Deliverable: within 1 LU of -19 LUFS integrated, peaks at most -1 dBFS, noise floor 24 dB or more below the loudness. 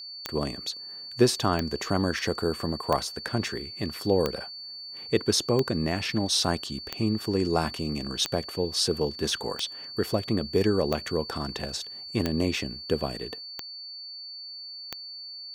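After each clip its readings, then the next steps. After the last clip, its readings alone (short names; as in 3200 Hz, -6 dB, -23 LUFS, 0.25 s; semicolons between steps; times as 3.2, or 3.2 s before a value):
clicks 12; steady tone 4500 Hz; tone level -38 dBFS; loudness -28.5 LUFS; peak -7.0 dBFS; loudness target -19.0 LUFS
-> de-click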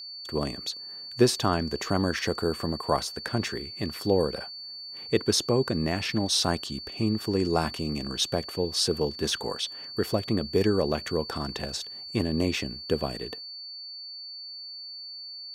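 clicks 0; steady tone 4500 Hz; tone level -38 dBFS
-> notch 4500 Hz, Q 30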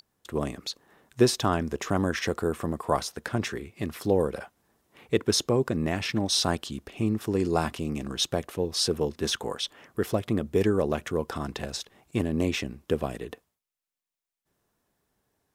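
steady tone none; loudness -28.5 LUFS; peak -7.0 dBFS; loudness target -19.0 LUFS
-> gain +9.5 dB; limiter -1 dBFS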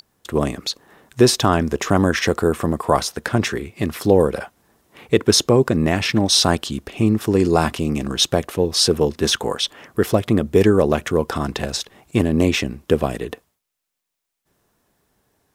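loudness -19.0 LUFS; peak -1.0 dBFS; noise floor -80 dBFS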